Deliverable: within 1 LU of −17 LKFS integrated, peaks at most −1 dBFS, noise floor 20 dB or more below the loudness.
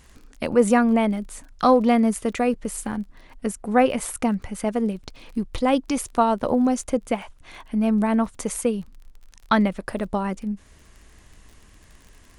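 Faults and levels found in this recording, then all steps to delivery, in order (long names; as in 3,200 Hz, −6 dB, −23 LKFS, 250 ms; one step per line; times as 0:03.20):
crackle rate 27 per second; integrated loudness −23.0 LKFS; sample peak −4.0 dBFS; target loudness −17.0 LKFS
→ click removal
level +6 dB
brickwall limiter −1 dBFS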